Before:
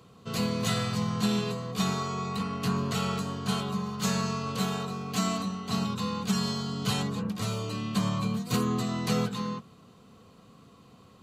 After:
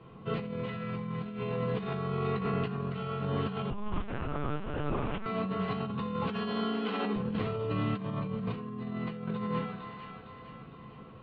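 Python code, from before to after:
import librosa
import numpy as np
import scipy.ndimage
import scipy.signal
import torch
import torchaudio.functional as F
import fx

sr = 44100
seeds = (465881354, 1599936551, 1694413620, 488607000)

y = fx.steep_highpass(x, sr, hz=200.0, slope=96, at=(6.22, 7.16))
y = fx.echo_split(y, sr, split_hz=740.0, low_ms=131, high_ms=457, feedback_pct=52, wet_db=-12.0)
y = fx.room_shoebox(y, sr, seeds[0], volume_m3=38.0, walls='mixed', distance_m=0.71)
y = fx.dynamic_eq(y, sr, hz=430.0, q=4.4, threshold_db=-42.0, ratio=4.0, max_db=4)
y = fx.over_compress(y, sr, threshold_db=-29.0, ratio=-1.0)
y = fx.lpc_vocoder(y, sr, seeds[1], excitation='pitch_kept', order=8, at=(3.7, 5.26))
y = scipy.signal.sosfilt(scipy.signal.butter(6, 3100.0, 'lowpass', fs=sr, output='sos'), y)
y = y * 10.0 ** (-4.5 / 20.0)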